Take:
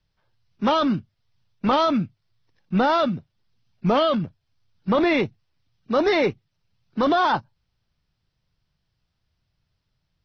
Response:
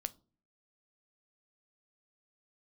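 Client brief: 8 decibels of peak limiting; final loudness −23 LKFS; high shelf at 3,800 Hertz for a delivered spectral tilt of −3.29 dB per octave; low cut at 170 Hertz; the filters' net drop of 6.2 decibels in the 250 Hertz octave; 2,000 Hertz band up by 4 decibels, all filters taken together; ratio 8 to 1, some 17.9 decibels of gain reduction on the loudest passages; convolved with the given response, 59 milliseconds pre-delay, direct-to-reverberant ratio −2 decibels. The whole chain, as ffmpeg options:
-filter_complex "[0:a]highpass=170,equalizer=frequency=250:width_type=o:gain=-7,equalizer=frequency=2000:width_type=o:gain=3,highshelf=frequency=3800:gain=8.5,acompressor=threshold=-35dB:ratio=8,alimiter=level_in=7dB:limit=-24dB:level=0:latency=1,volume=-7dB,asplit=2[link_01][link_02];[1:a]atrim=start_sample=2205,adelay=59[link_03];[link_02][link_03]afir=irnorm=-1:irlink=0,volume=3.5dB[link_04];[link_01][link_04]amix=inputs=2:normalize=0,volume=15dB"

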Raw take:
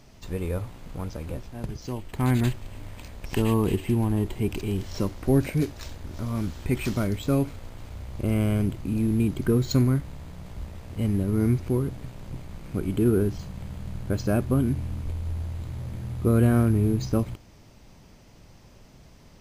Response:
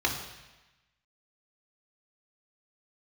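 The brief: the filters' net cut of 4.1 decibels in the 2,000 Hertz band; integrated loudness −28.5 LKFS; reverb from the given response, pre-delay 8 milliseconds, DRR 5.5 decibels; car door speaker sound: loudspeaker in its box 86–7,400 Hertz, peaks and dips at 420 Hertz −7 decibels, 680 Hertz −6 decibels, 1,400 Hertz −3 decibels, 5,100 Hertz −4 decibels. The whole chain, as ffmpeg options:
-filter_complex "[0:a]equalizer=frequency=2000:width_type=o:gain=-4,asplit=2[link_01][link_02];[1:a]atrim=start_sample=2205,adelay=8[link_03];[link_02][link_03]afir=irnorm=-1:irlink=0,volume=-16dB[link_04];[link_01][link_04]amix=inputs=2:normalize=0,highpass=86,equalizer=frequency=420:width_type=q:width=4:gain=-7,equalizer=frequency=680:width_type=q:width=4:gain=-6,equalizer=frequency=1400:width_type=q:width=4:gain=-3,equalizer=frequency=5100:width_type=q:width=4:gain=-4,lowpass=frequency=7400:width=0.5412,lowpass=frequency=7400:width=1.3066,volume=-3dB"

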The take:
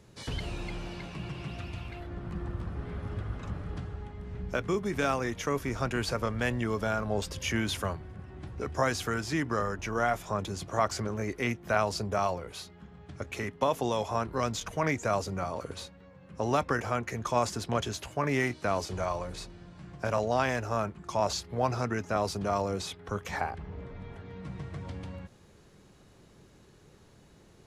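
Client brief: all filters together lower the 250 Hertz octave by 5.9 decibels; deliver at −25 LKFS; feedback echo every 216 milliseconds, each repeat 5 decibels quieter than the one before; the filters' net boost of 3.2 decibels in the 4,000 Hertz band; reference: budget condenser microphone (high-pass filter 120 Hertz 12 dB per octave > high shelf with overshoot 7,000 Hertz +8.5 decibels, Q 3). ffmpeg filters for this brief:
ffmpeg -i in.wav -af "highpass=120,equalizer=frequency=250:width_type=o:gain=-7.5,equalizer=frequency=4000:width_type=o:gain=8,highshelf=frequency=7000:width_type=q:width=3:gain=8.5,aecho=1:1:216|432|648|864|1080|1296|1512:0.562|0.315|0.176|0.0988|0.0553|0.031|0.0173,volume=5.5dB" out.wav

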